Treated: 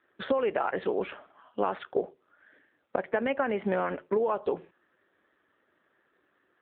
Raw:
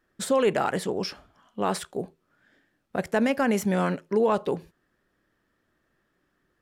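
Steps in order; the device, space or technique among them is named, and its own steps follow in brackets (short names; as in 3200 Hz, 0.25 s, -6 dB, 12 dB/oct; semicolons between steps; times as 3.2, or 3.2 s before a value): 1.8–2.96 dynamic EQ 540 Hz, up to +7 dB, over -44 dBFS, Q 0.89; voicemail (BPF 360–2800 Hz; compressor 12:1, threshold -30 dBFS, peak gain reduction 11.5 dB; gain +7 dB; AMR-NB 7.4 kbps 8000 Hz)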